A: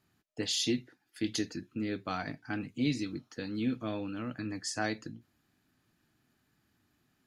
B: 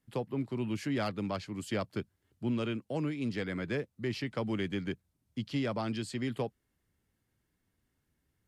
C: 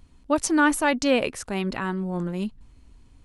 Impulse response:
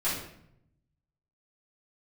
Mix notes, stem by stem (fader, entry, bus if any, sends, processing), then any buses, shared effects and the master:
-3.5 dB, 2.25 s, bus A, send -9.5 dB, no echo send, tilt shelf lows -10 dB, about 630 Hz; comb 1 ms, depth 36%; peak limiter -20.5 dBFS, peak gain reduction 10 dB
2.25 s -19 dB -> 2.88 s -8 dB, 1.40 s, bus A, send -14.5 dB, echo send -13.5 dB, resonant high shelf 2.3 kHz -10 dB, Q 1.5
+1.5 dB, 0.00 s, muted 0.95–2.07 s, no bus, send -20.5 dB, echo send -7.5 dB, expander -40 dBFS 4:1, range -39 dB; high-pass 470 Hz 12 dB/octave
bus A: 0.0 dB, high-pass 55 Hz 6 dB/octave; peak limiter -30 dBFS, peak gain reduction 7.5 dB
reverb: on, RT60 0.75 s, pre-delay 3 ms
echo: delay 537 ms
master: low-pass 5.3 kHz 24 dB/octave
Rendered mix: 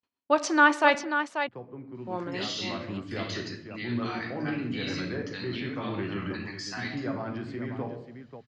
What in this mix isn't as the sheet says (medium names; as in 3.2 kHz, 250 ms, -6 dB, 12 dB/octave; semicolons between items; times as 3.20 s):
stem A: entry 2.25 s -> 1.95 s; stem B -19.0 dB -> -9.0 dB